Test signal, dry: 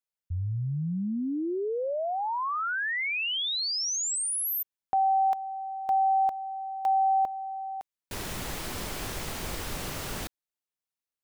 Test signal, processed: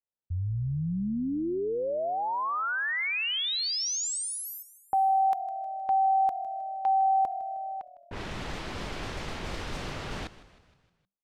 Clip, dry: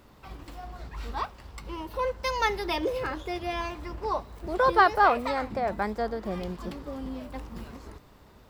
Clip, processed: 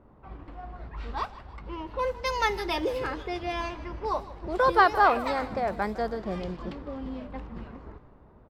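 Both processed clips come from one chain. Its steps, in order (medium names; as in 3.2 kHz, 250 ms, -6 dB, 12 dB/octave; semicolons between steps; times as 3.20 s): level-controlled noise filter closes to 930 Hz, open at -25.5 dBFS; frequency-shifting echo 156 ms, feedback 53%, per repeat -40 Hz, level -17 dB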